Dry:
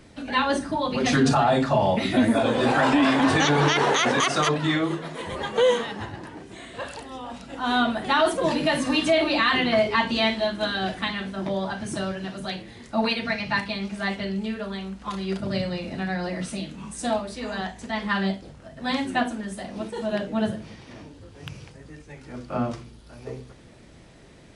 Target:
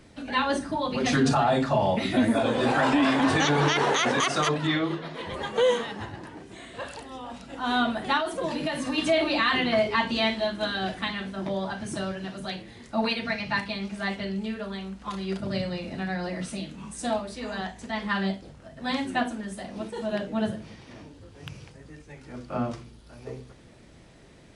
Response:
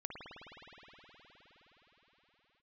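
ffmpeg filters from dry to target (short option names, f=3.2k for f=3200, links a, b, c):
-filter_complex "[0:a]asettb=1/sr,asplit=3[a][b][c];[a]atrim=end=4.674[d];[b]atrim=start=4.67:end=5.34,asetpts=PTS-STARTPTS,afade=t=in:d=0.004:c=qsin,afade=t=out:st=0.666:d=0.004:c=qsin,highshelf=f=6k:t=q:w=1.5:g=-8.5[e];[c]atrim=start=5.336[f];[d][e]acrossfade=d=0.004:c1=hsin:c2=qsin[g];[g][f]acrossfade=d=0.004:c1=qsin:c2=hsin,asettb=1/sr,asplit=3[h][i][j];[h]atrim=end=8.174[k];[i]atrim=start=8.17:end=8.98,asetpts=PTS-STARTPTS,afade=t=in:d=0.004:c=qsin,afade=t=out:st=0.806:d=0.004:c=qsin,acompressor=threshold=-23dB:ratio=6[l];[j]atrim=start=8.976[m];[k][l]acrossfade=d=0.004:c1=hsin:c2=qsin[n];[n][m]acrossfade=d=0.004:c1=qsin:c2=hsin,volume=-2.5dB"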